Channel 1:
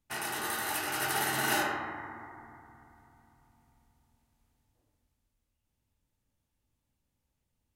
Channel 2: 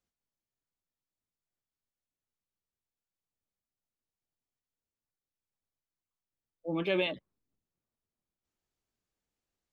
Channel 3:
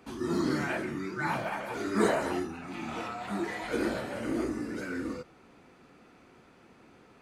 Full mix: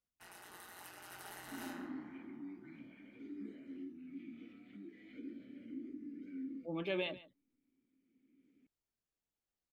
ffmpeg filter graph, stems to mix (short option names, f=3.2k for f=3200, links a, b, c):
-filter_complex "[0:a]tremolo=f=180:d=0.75,adelay=100,volume=-17dB,asplit=2[a][b];[b]volume=-20dB[c];[1:a]volume=-7.5dB,asplit=3[d][e][f];[e]volume=-17.5dB[g];[2:a]tiltshelf=f=650:g=5.5,acompressor=threshold=-38dB:ratio=2.5,asplit=3[h][i][j];[h]bandpass=f=270:t=q:w=8,volume=0dB[k];[i]bandpass=f=2.29k:t=q:w=8,volume=-6dB[l];[j]bandpass=f=3.01k:t=q:w=8,volume=-9dB[m];[k][l][m]amix=inputs=3:normalize=0,adelay=1450,volume=-3dB[n];[f]apad=whole_len=382226[o];[n][o]sidechaincompress=threshold=-57dB:ratio=8:attack=33:release=1150[p];[c][g]amix=inputs=2:normalize=0,aecho=0:1:143:1[q];[a][d][p][q]amix=inputs=4:normalize=0"